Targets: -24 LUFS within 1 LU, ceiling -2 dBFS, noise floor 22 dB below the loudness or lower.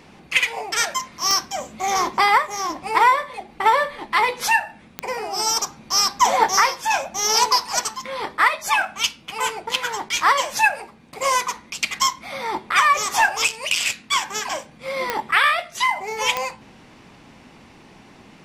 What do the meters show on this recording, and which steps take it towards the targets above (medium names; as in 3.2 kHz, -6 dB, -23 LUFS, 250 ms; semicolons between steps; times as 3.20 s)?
clicks found 4; loudness -20.5 LUFS; peak level -2.0 dBFS; loudness target -24.0 LUFS
-> de-click; trim -3.5 dB